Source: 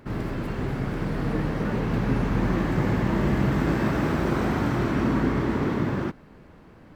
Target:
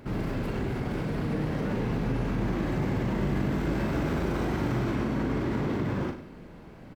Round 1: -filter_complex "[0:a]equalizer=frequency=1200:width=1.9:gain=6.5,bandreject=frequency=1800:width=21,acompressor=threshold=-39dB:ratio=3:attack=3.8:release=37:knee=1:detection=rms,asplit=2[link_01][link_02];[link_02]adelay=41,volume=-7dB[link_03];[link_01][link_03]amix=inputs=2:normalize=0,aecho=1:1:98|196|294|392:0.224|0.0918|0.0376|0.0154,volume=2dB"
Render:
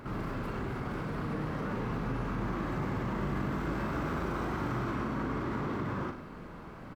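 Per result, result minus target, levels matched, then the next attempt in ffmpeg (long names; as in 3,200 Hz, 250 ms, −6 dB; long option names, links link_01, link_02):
downward compressor: peak gain reduction +6 dB; 1,000 Hz band +5.5 dB
-filter_complex "[0:a]equalizer=frequency=1200:width=1.9:gain=6.5,bandreject=frequency=1800:width=21,acompressor=threshold=-30.5dB:ratio=3:attack=3.8:release=37:knee=1:detection=rms,asplit=2[link_01][link_02];[link_02]adelay=41,volume=-7dB[link_03];[link_01][link_03]amix=inputs=2:normalize=0,aecho=1:1:98|196|294|392:0.224|0.0918|0.0376|0.0154,volume=2dB"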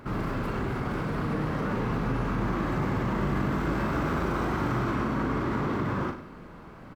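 1,000 Hz band +5.0 dB
-filter_complex "[0:a]equalizer=frequency=1200:width=1.9:gain=-3.5,bandreject=frequency=1800:width=21,acompressor=threshold=-30.5dB:ratio=3:attack=3.8:release=37:knee=1:detection=rms,asplit=2[link_01][link_02];[link_02]adelay=41,volume=-7dB[link_03];[link_01][link_03]amix=inputs=2:normalize=0,aecho=1:1:98|196|294|392:0.224|0.0918|0.0376|0.0154,volume=2dB"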